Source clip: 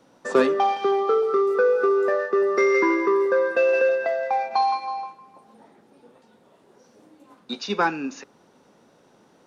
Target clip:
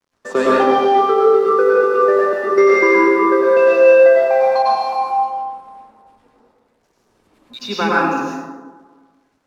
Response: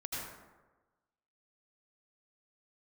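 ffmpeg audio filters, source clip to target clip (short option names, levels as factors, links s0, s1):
-filter_complex "[0:a]aeval=exprs='sgn(val(0))*max(abs(val(0))-0.00266,0)':c=same,asettb=1/sr,asplit=3[s0][s1][s2];[s0]atrim=end=4.624[s3];[s1]atrim=start=4.62:end=7.59,asetpts=PTS-STARTPTS,afade=t=in:d=0.004:c=qsin,afade=t=out:st=2.966:d=0.004:c=qsin,acrossover=split=170|1500[s4][s5][s6];[s6]adelay=40[s7];[s5]adelay=200[s8];[s4][s8][s7]amix=inputs=3:normalize=0,atrim=end_sample=130977[s9];[s2]atrim=start=7.586[s10];[s3][s9]acrossfade=d=0.004:c1=hsin:c2=qsin[s11];[s11][s10]acrossfade=d=0.004:c1=qsin:c2=hsin[s12];[1:a]atrim=start_sample=2205,asetrate=36162,aresample=44100[s13];[s12][s13]afir=irnorm=-1:irlink=0,volume=1.68"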